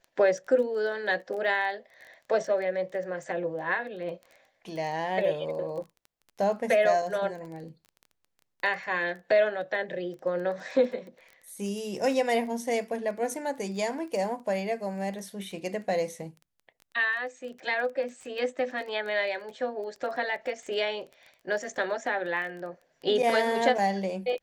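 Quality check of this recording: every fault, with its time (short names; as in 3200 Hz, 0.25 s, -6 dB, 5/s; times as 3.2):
crackle 14/s -37 dBFS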